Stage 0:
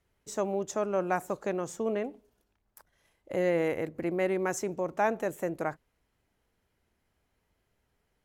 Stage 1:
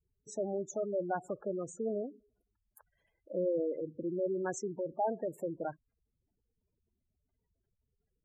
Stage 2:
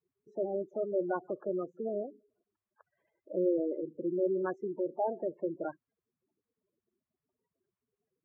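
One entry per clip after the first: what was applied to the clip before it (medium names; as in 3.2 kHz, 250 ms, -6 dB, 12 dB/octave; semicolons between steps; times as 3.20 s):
spectral gate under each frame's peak -10 dB strong; trim -4 dB
coarse spectral quantiser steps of 30 dB; cabinet simulation 180–2400 Hz, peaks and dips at 360 Hz +9 dB, 600 Hz +5 dB, 1.1 kHz +7 dB; trim -2.5 dB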